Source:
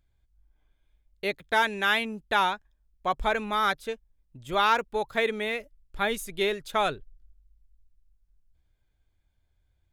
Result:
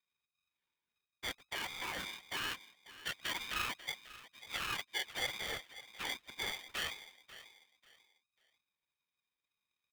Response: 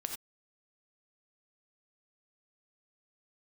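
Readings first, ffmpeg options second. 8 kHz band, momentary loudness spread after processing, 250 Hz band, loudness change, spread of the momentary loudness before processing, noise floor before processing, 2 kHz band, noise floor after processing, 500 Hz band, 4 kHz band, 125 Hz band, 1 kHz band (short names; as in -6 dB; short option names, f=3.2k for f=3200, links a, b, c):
-2.0 dB, 16 LU, -18.5 dB, -12.5 dB, 10 LU, -72 dBFS, -11.5 dB, under -85 dBFS, -22.0 dB, -5.5 dB, -11.5 dB, -19.0 dB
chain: -filter_complex "[0:a]highpass=110,alimiter=limit=-19dB:level=0:latency=1:release=45,afftfilt=real='hypot(re,im)*cos(2*PI*random(0))':imag='hypot(re,im)*sin(2*PI*random(1))':win_size=512:overlap=0.75,asplit=2[a][b];[b]adelay=542,lowpass=f=960:p=1,volume=-13dB,asplit=2[c][d];[d]adelay=542,lowpass=f=960:p=1,volume=0.34,asplit=2[e][f];[f]adelay=542,lowpass=f=960:p=1,volume=0.34[g];[a][c][e][g]amix=inputs=4:normalize=0,acrusher=bits=7:mode=log:mix=0:aa=0.000001,lowpass=f=2.7k:t=q:w=0.5098,lowpass=f=2.7k:t=q:w=0.6013,lowpass=f=2.7k:t=q:w=0.9,lowpass=f=2.7k:t=q:w=2.563,afreqshift=-3200,aeval=exprs='val(0)*sgn(sin(2*PI*650*n/s))':c=same,volume=-4.5dB"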